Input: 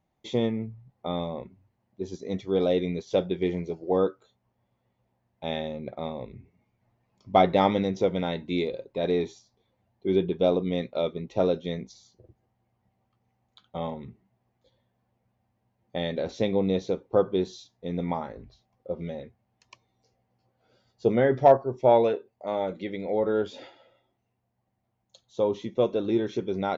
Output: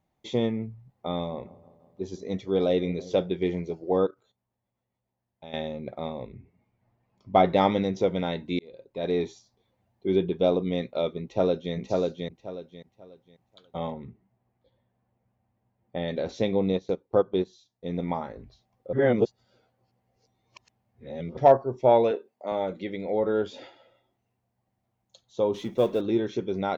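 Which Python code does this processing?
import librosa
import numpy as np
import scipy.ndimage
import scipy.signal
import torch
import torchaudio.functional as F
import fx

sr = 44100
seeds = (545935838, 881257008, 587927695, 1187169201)

y = fx.echo_wet_lowpass(x, sr, ms=167, feedback_pct=62, hz=1200.0, wet_db=-19.5, at=(1.13, 3.29))
y = fx.level_steps(y, sr, step_db=14, at=(4.06, 5.54))
y = fx.high_shelf(y, sr, hz=5100.0, db=-11.0, at=(6.27, 7.45))
y = fx.echo_throw(y, sr, start_s=11.22, length_s=0.52, ms=540, feedback_pct=25, wet_db=-2.0)
y = fx.air_absorb(y, sr, metres=290.0, at=(13.92, 16.08))
y = fx.transient(y, sr, attack_db=0, sustain_db=-12, at=(16.72, 18.11))
y = fx.highpass(y, sr, hz=170.0, slope=24, at=(22.11, 22.52))
y = fx.law_mismatch(y, sr, coded='mu', at=(25.54, 26.01))
y = fx.edit(y, sr, fx.fade_in_span(start_s=8.59, length_s=0.61),
    fx.reverse_span(start_s=18.93, length_s=2.44), tone=tone)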